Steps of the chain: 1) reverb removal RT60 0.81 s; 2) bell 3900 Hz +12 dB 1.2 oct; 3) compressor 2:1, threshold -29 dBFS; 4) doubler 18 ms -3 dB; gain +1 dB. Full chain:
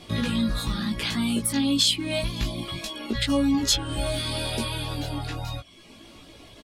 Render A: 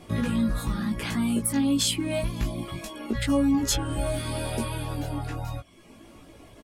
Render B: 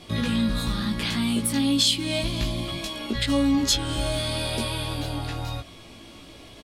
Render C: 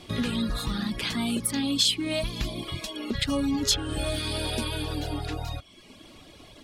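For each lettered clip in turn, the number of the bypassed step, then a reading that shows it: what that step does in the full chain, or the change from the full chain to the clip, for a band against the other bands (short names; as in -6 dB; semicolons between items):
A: 2, 4 kHz band -7.5 dB; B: 1, momentary loudness spread change +2 LU; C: 4, loudness change -2.0 LU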